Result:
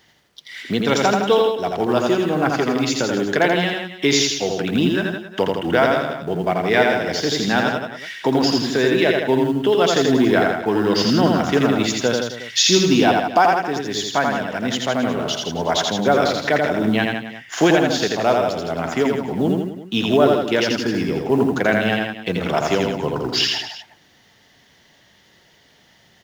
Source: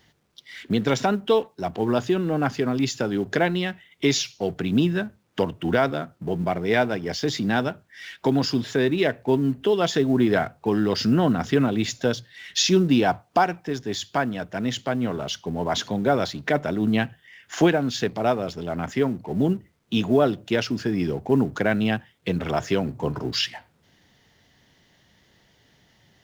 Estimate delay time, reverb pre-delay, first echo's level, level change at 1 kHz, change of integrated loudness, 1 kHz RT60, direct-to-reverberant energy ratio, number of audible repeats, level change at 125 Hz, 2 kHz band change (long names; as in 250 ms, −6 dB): 84 ms, no reverb audible, −3.0 dB, +6.5 dB, +5.0 dB, no reverb audible, no reverb audible, 4, +1.0 dB, +7.5 dB